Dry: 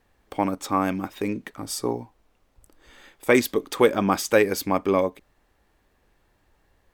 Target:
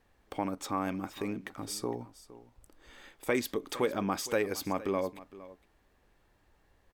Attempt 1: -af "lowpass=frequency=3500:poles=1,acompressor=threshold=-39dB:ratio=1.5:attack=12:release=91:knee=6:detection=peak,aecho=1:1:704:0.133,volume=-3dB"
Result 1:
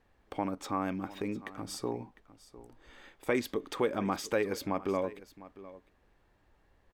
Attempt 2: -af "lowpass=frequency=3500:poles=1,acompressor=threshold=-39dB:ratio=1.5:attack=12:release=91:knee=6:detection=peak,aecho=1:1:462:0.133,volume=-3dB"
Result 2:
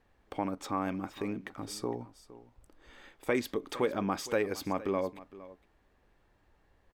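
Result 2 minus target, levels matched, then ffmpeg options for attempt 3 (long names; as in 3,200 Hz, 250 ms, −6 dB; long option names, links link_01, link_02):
8,000 Hz band −4.0 dB
-af "lowpass=frequency=12000:poles=1,acompressor=threshold=-39dB:ratio=1.5:attack=12:release=91:knee=6:detection=peak,aecho=1:1:462:0.133,volume=-3dB"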